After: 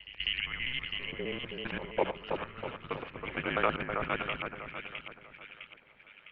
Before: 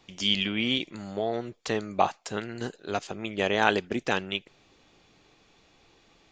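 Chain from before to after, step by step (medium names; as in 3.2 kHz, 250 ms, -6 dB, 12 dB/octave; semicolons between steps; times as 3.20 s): time reversed locally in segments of 66 ms; pre-echo 198 ms -16.5 dB; mistuned SSB -250 Hz 220–3100 Hz; bass shelf 310 Hz -11 dB; on a send: two-band feedback delay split 1.9 kHz, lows 322 ms, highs 657 ms, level -5.5 dB; on the sum: trim -3 dB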